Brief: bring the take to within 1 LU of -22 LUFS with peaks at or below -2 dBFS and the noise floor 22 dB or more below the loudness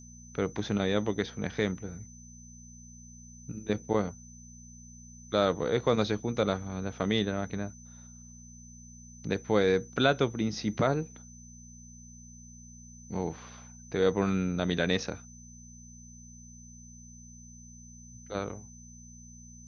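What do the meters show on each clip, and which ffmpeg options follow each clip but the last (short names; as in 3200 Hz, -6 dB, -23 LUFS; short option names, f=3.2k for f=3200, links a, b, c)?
hum 60 Hz; harmonics up to 240 Hz; hum level -49 dBFS; steady tone 6100 Hz; tone level -52 dBFS; loudness -30.5 LUFS; peak -10.0 dBFS; loudness target -22.0 LUFS
-> -af "bandreject=f=60:t=h:w=4,bandreject=f=120:t=h:w=4,bandreject=f=180:t=h:w=4,bandreject=f=240:t=h:w=4"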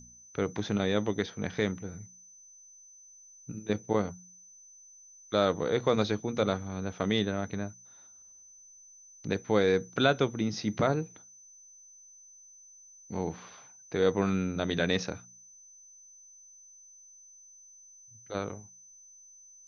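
hum none; steady tone 6100 Hz; tone level -52 dBFS
-> -af "bandreject=f=6.1k:w=30"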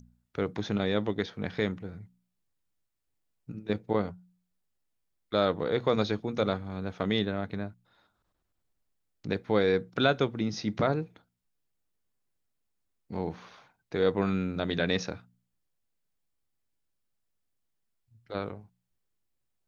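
steady tone none; loudness -30.5 LUFS; peak -9.5 dBFS; loudness target -22.0 LUFS
-> -af "volume=8.5dB,alimiter=limit=-2dB:level=0:latency=1"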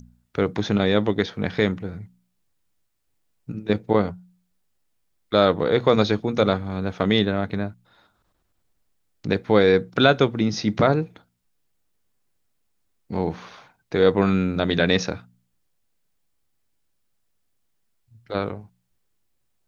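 loudness -22.0 LUFS; peak -2.0 dBFS; noise floor -71 dBFS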